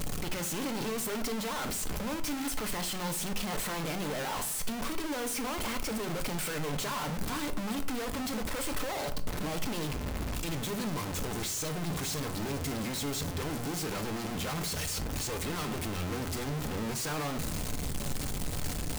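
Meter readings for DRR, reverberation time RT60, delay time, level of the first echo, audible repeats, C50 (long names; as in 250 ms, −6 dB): 7.0 dB, 0.50 s, no echo audible, no echo audible, no echo audible, 14.0 dB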